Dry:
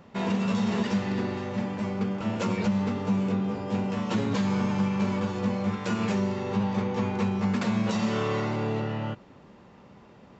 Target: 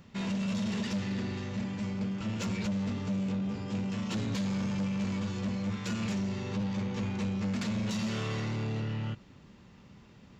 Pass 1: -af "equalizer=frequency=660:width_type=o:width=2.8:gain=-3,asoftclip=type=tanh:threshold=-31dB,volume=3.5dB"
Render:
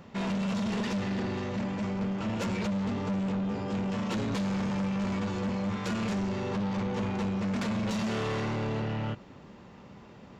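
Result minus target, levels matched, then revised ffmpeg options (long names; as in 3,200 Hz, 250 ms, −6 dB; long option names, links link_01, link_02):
500 Hz band +4.5 dB
-af "equalizer=frequency=660:width_type=o:width=2.8:gain=-14,asoftclip=type=tanh:threshold=-31dB,volume=3.5dB"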